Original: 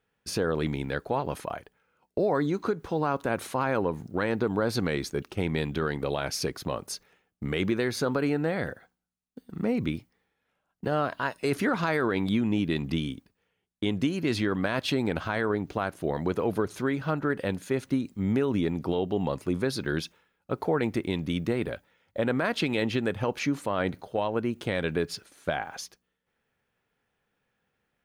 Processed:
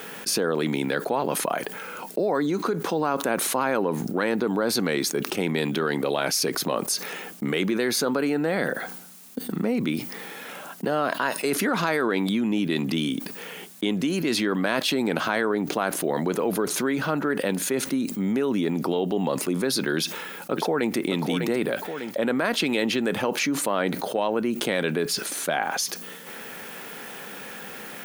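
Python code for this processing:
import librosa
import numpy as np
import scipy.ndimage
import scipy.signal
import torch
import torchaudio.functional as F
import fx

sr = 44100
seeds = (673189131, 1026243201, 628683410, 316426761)

y = fx.echo_throw(x, sr, start_s=19.97, length_s=0.99, ms=600, feedback_pct=10, wet_db=-9.5)
y = scipy.signal.sosfilt(scipy.signal.butter(4, 180.0, 'highpass', fs=sr, output='sos'), y)
y = fx.high_shelf(y, sr, hz=7400.0, db=10.5)
y = fx.env_flatten(y, sr, amount_pct=70)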